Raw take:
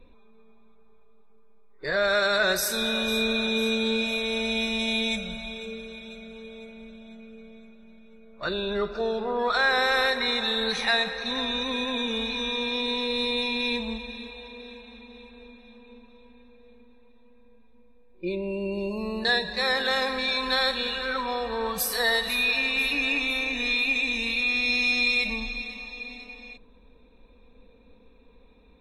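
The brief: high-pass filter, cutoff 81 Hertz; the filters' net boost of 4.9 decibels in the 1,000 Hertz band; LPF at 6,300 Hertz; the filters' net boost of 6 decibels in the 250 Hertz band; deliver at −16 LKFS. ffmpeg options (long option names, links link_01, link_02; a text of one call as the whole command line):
ffmpeg -i in.wav -af "highpass=81,lowpass=6300,equalizer=frequency=250:width_type=o:gain=6.5,equalizer=frequency=1000:width_type=o:gain=6,volume=7.5dB" out.wav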